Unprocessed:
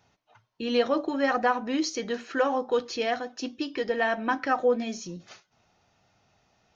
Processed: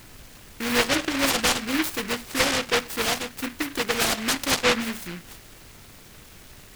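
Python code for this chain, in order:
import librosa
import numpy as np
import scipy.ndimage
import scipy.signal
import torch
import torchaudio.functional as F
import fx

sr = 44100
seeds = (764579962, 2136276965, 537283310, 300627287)

p1 = fx.dmg_noise_colour(x, sr, seeds[0], colour='pink', level_db=-49.0)
p2 = np.clip(p1, -10.0 ** (-23.0 / 20.0), 10.0 ** (-23.0 / 20.0))
p3 = p1 + F.gain(torch.from_numpy(p2), -9.0).numpy()
y = fx.noise_mod_delay(p3, sr, seeds[1], noise_hz=1800.0, depth_ms=0.34)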